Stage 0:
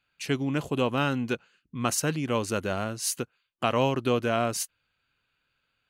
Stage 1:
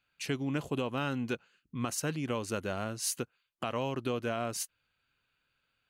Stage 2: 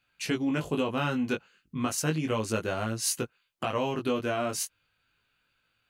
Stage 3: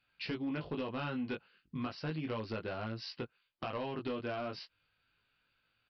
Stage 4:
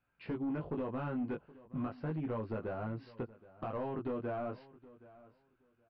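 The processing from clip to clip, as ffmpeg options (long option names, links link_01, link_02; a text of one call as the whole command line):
ffmpeg -i in.wav -af "alimiter=limit=-18.5dB:level=0:latency=1:release=365,volume=-2.5dB" out.wav
ffmpeg -i in.wav -af "flanger=delay=17.5:depth=2.8:speed=0.34,volume=7.5dB" out.wav
ffmpeg -i in.wav -af "acompressor=threshold=-34dB:ratio=2,aresample=11025,volume=27.5dB,asoftclip=hard,volume=-27.5dB,aresample=44100,volume=-3.5dB" out.wav
ffmpeg -i in.wav -af "volume=34dB,asoftclip=hard,volume=-34dB,lowpass=1200,aecho=1:1:771|1542:0.1|0.018,volume=2dB" out.wav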